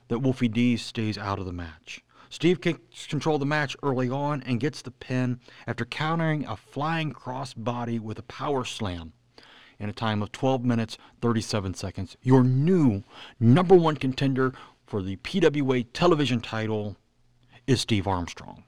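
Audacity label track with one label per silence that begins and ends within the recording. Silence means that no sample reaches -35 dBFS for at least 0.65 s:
16.930000	17.680000	silence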